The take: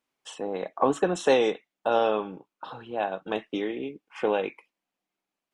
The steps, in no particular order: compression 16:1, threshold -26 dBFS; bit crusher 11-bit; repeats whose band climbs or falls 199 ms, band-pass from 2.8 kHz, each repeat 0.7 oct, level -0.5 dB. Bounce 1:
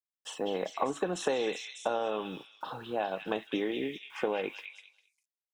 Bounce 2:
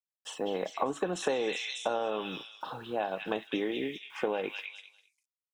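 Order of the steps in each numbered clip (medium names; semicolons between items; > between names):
bit crusher > compression > repeats whose band climbs or falls; bit crusher > repeats whose band climbs or falls > compression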